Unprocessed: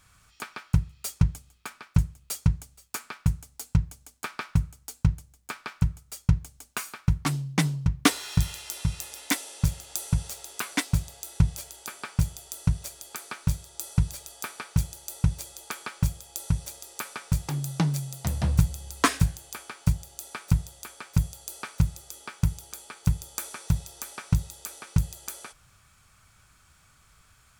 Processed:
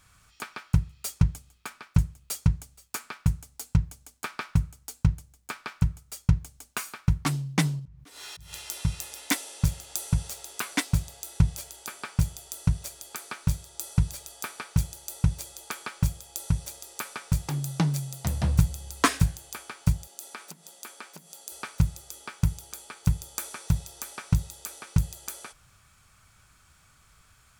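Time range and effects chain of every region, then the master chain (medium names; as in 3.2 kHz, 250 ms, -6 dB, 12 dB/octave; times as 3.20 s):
7.79–8.53 s: compression 2:1, threshold -39 dBFS + slow attack 197 ms
20.07–21.52 s: compression 3:1, threshold -35 dBFS + brick-wall FIR high-pass 170 Hz
whole clip: none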